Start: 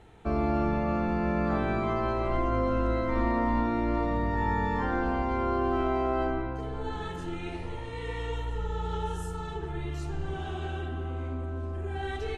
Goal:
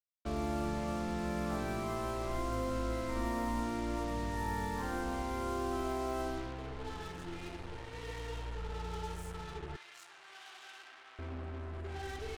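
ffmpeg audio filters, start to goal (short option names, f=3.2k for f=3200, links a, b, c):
-filter_complex "[0:a]acrusher=bits=5:mix=0:aa=0.5,asettb=1/sr,asplit=3[a][b][c];[a]atrim=end=9.764[d];[b]atrim=start=9.76:end=11.19,asetpts=PTS-STARTPTS,afade=t=in:d=0.004:c=qsin,afade=t=out:st=1.426:d=0.004:c=qsin,highpass=1.3k[e];[c]atrim=start=11.186[f];[d][e]acrossfade=d=0.004:c1=hsin:c2=qsin[g];[g][f]acrossfade=d=0.004:c1=qsin:c2=hsin,volume=-8.5dB"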